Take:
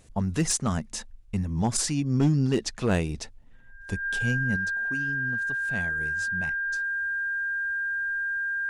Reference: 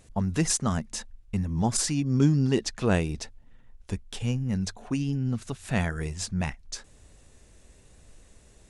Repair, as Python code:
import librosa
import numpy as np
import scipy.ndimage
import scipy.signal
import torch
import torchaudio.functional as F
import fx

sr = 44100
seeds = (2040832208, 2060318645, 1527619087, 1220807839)

y = fx.fix_declip(x, sr, threshold_db=-15.5)
y = fx.notch(y, sr, hz=1600.0, q=30.0)
y = fx.fix_level(y, sr, at_s=4.56, step_db=8.5)